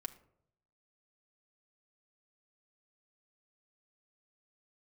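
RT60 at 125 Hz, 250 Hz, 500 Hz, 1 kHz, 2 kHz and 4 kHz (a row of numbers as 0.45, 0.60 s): 1.0, 0.75, 0.80, 0.65, 0.45, 0.35 s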